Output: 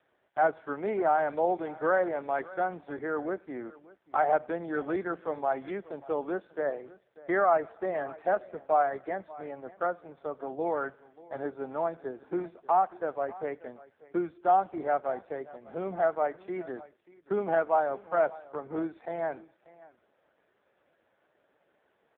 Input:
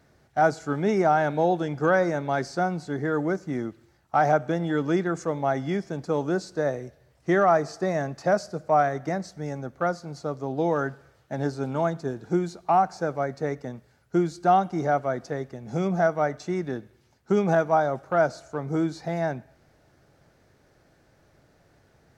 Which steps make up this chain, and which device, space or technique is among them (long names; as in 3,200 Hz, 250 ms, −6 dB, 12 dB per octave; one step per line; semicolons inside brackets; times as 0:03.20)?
satellite phone (band-pass filter 380–3,400 Hz; single-tap delay 587 ms −20 dB; level −2.5 dB; AMR narrowband 5.15 kbit/s 8,000 Hz)